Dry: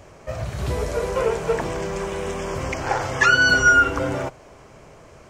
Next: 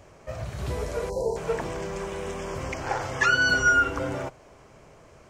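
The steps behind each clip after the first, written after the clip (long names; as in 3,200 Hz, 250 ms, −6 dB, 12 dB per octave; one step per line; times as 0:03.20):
time-frequency box erased 0:01.10–0:01.36, 1,000–3,900 Hz
level −5.5 dB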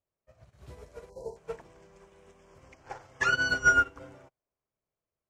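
expander for the loud parts 2.5 to 1, over −44 dBFS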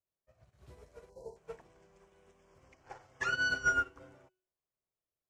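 tuned comb filter 370 Hz, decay 0.54 s, mix 60%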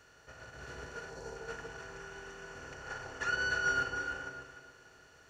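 compressor on every frequency bin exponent 0.4
on a send: delay that swaps between a low-pass and a high-pass 150 ms, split 990 Hz, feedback 54%, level −2 dB
on the sum: level −4.5 dB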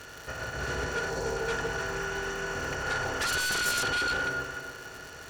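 surface crackle 210 per second −50 dBFS
in parallel at −6.5 dB: sine wavefolder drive 16 dB, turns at −21.5 dBFS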